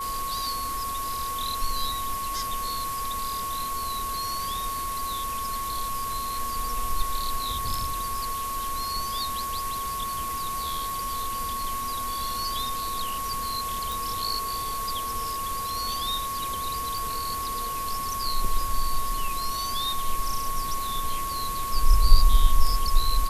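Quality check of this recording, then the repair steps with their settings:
whistle 1,100 Hz −29 dBFS
0:13.92: click
0:16.98: click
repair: click removal
notch filter 1,100 Hz, Q 30

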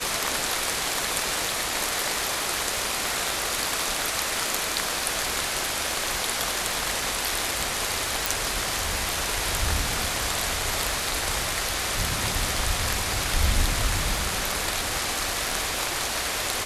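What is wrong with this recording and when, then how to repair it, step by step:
surface crackle 58 per second −32 dBFS
0:08.26: click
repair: click removal

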